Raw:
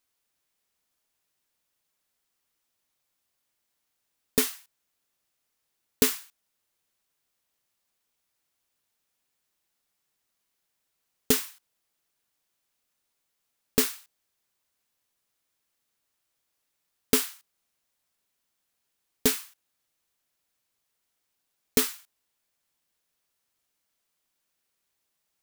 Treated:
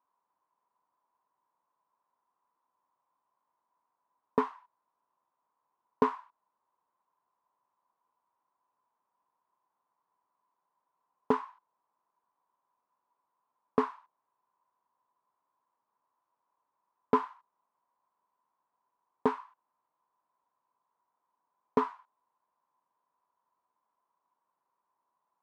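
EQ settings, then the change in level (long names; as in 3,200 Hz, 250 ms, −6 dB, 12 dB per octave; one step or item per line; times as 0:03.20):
Bessel high-pass filter 190 Hz, order 2
low-pass with resonance 1,000 Hz, resonance Q 12
−2.0 dB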